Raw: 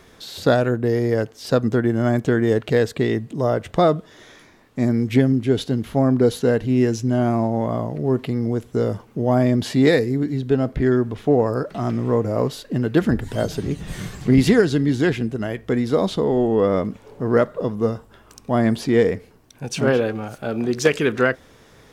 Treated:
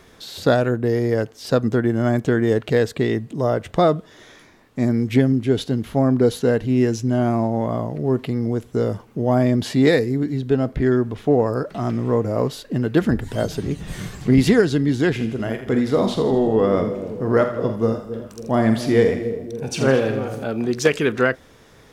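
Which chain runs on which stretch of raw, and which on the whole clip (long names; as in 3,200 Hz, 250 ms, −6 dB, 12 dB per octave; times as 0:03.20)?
0:15.11–0:20.44: double-tracking delay 45 ms −9 dB + echo with a time of its own for lows and highs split 590 Hz, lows 276 ms, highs 82 ms, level −10 dB
whole clip: no processing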